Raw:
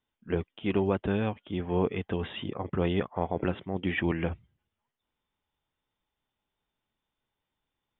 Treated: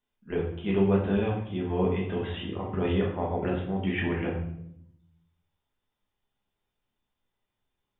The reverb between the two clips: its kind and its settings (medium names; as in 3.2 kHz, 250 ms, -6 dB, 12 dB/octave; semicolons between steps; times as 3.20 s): simulated room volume 170 m³, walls mixed, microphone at 1.3 m; trim -4.5 dB